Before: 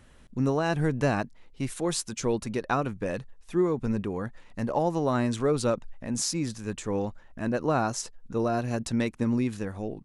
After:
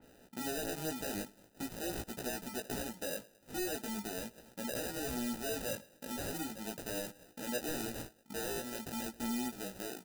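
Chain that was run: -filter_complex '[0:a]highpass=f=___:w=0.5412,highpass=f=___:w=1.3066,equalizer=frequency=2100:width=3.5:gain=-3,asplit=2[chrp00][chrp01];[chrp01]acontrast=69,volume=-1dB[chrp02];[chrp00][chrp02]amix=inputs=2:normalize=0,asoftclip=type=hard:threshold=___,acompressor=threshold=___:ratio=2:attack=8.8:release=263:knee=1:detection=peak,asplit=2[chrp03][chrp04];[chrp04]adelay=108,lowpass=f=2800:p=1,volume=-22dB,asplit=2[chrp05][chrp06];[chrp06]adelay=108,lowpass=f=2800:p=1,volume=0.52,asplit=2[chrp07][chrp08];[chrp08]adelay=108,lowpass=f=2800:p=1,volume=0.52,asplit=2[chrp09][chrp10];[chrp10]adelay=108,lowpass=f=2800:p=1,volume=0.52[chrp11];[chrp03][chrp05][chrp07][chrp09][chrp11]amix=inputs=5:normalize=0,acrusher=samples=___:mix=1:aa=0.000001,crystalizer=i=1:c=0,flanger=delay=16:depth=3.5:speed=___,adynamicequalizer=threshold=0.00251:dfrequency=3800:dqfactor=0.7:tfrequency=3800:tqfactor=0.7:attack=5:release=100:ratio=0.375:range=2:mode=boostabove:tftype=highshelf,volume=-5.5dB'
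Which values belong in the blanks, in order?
200, 200, -17.5dB, -38dB, 40, 0.41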